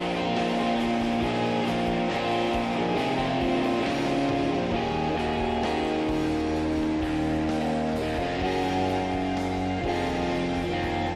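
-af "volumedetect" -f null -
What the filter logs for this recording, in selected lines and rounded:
mean_volume: -26.0 dB
max_volume: -14.0 dB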